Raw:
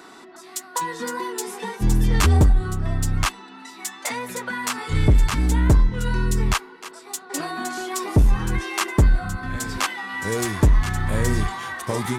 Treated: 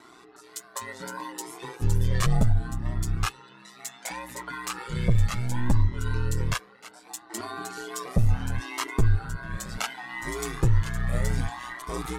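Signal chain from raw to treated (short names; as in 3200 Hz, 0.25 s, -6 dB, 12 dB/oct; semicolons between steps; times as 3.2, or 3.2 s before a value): ring modulator 61 Hz; cascading flanger rising 0.68 Hz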